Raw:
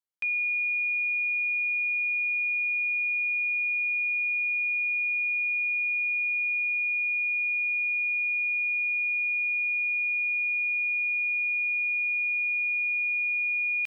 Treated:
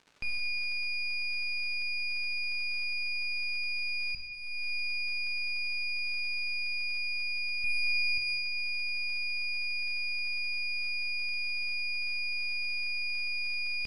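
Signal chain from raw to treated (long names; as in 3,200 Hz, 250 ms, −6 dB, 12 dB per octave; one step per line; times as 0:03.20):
0:07.64–0:08.18: spectral tilt +3.5 dB per octave
half-wave rectification
surface crackle 150 per second −42 dBFS
high-frequency loss of the air 81 metres
0:04.15–0:04.73: fade in
reverb whose tail is shaped and stops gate 430 ms falling, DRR 2 dB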